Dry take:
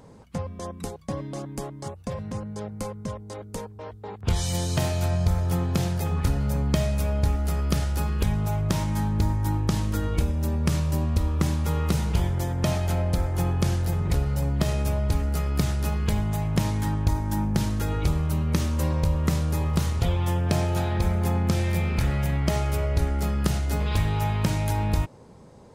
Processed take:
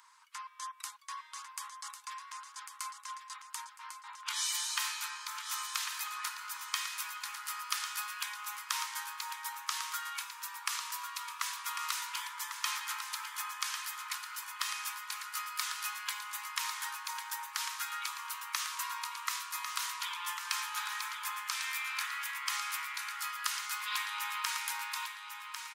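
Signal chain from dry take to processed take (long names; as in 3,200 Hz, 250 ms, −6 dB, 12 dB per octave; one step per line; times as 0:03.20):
Butterworth high-pass 950 Hz 96 dB per octave
on a send: repeating echo 1,098 ms, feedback 30%, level −8 dB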